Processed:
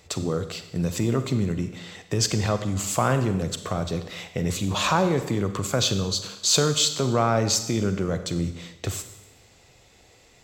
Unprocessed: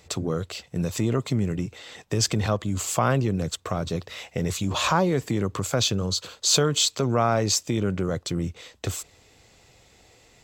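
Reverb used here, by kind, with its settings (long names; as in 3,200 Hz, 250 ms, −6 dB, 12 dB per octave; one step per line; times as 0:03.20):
four-comb reverb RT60 1 s, combs from 31 ms, DRR 9 dB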